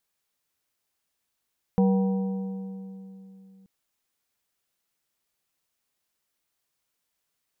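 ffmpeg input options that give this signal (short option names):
-f lavfi -i "aevalsrc='0.141*pow(10,-3*t/3.26)*sin(2*PI*192*t)+0.0631*pow(10,-3*t/2.476)*sin(2*PI*480*t)+0.0282*pow(10,-3*t/2.151)*sin(2*PI*768*t)+0.0126*pow(10,-3*t/2.012)*sin(2*PI*960*t)':d=1.88:s=44100"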